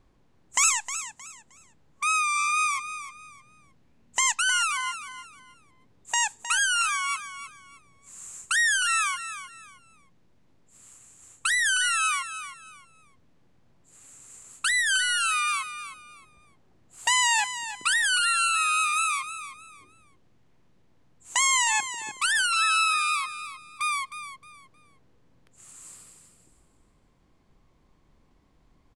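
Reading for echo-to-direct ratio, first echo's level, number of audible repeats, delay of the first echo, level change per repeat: −11.0 dB, −11.5 dB, 3, 311 ms, −11.5 dB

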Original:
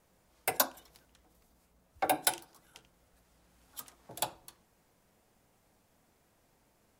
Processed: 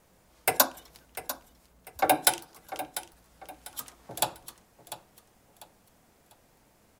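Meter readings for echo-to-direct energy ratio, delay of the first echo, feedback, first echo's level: −13.0 dB, 696 ms, 33%, −13.5 dB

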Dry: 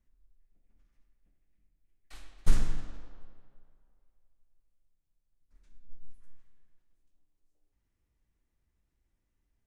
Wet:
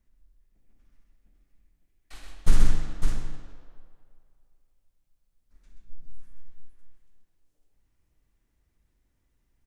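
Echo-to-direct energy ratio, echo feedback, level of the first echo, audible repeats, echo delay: −1.0 dB, repeats not evenly spaced, −9.0 dB, 3, 61 ms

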